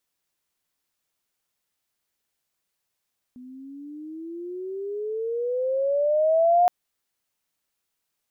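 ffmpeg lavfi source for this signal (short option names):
-f lavfi -i "aevalsrc='pow(10,(-14+26*(t/3.32-1))/20)*sin(2*PI*247*3.32/(18.5*log(2)/12)*(exp(18.5*log(2)/12*t/3.32)-1))':d=3.32:s=44100"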